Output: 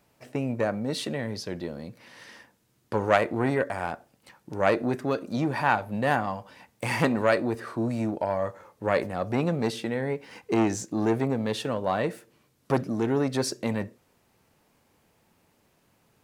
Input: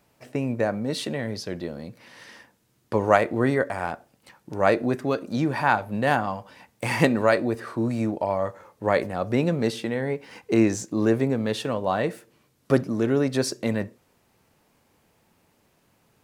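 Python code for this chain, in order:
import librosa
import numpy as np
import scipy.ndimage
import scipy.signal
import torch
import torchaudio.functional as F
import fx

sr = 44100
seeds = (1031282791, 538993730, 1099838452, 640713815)

y = fx.transformer_sat(x, sr, knee_hz=1100.0)
y = F.gain(torch.from_numpy(y), -1.5).numpy()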